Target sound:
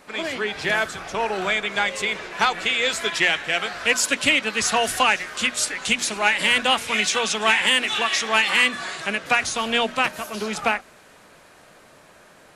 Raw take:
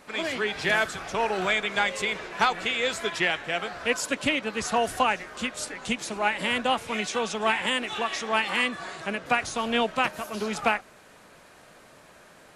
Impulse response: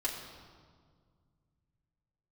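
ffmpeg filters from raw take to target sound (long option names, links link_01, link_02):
-filter_complex "[0:a]bandreject=frequency=60:width_type=h:width=6,bandreject=frequency=120:width_type=h:width=6,bandreject=frequency=180:width_type=h:width=6,bandreject=frequency=240:width_type=h:width=6,acrossover=split=1500[link_01][link_02];[link_02]dynaudnorm=framelen=200:gausssize=31:maxgain=10dB[link_03];[link_01][link_03]amix=inputs=2:normalize=0,asoftclip=type=tanh:threshold=-9dB,volume=2dB"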